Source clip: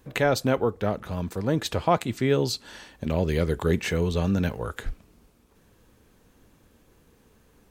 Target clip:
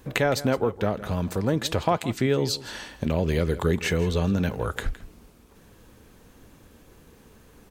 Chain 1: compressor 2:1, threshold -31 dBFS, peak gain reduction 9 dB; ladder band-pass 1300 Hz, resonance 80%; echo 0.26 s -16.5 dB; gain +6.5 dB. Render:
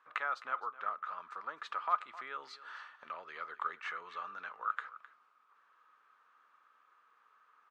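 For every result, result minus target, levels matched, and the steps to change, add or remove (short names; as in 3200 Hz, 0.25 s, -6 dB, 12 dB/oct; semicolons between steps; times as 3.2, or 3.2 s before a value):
echo 96 ms late; 1000 Hz band +9.5 dB
change: echo 0.164 s -16.5 dB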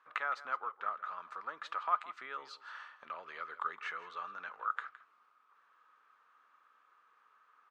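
1000 Hz band +9.5 dB
remove: ladder band-pass 1300 Hz, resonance 80%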